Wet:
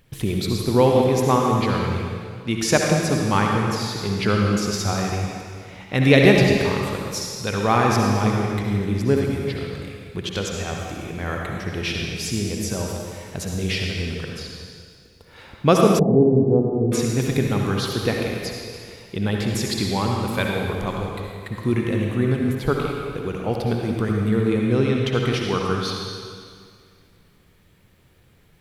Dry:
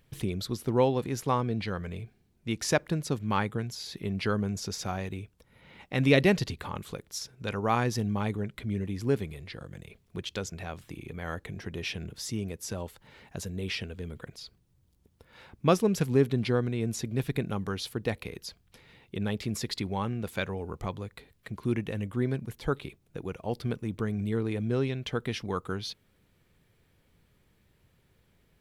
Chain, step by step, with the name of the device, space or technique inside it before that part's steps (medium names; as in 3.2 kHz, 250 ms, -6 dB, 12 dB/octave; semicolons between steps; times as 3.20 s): stairwell (reverberation RT60 2.0 s, pre-delay 55 ms, DRR -0.5 dB); 15.99–16.92 s: elliptic low-pass 810 Hz, stop band 70 dB; trim +7 dB